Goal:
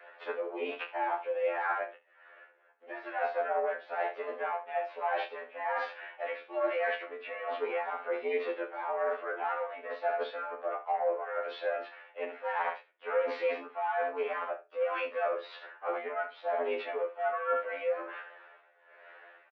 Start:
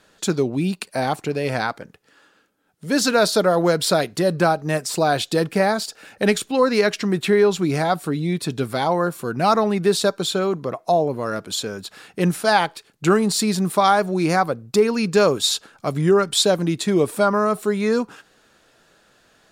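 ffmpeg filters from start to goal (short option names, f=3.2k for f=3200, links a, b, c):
-filter_complex "[0:a]asoftclip=type=tanh:threshold=-12.5dB,highpass=f=400:t=q:w=0.5412,highpass=f=400:t=q:w=1.307,lowpass=f=2.4k:t=q:w=0.5176,lowpass=f=2.4k:t=q:w=0.7071,lowpass=f=2.4k:t=q:w=1.932,afreqshift=83,asplit=2[a][b];[b]aecho=0:1:68|136:0.282|0.0451[c];[a][c]amix=inputs=2:normalize=0,tremolo=f=1.2:d=0.83,asplit=2[d][e];[e]asetrate=55563,aresample=44100,atempo=0.793701,volume=-14dB[f];[d][f]amix=inputs=2:normalize=0,areverse,acompressor=threshold=-36dB:ratio=8,areverse,asplit=2[g][h];[h]adelay=29,volume=-7dB[i];[g][i]amix=inputs=2:normalize=0,afftfilt=real='re*2*eq(mod(b,4),0)':imag='im*2*eq(mod(b,4),0)':win_size=2048:overlap=0.75,volume=8dB"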